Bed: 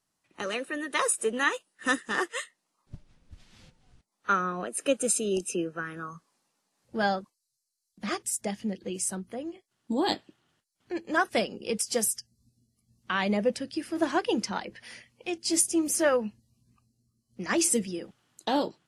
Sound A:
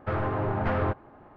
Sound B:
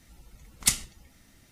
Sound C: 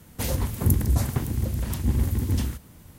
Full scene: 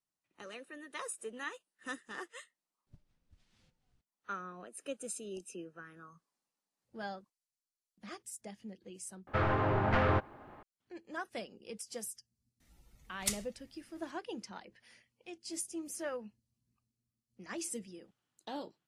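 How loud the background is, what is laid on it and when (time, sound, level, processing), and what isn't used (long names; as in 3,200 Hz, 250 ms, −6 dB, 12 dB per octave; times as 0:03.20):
bed −15.5 dB
0:09.27: overwrite with A −3 dB + high-shelf EQ 2,100 Hz +11 dB
0:12.60: mix in B −11 dB
not used: C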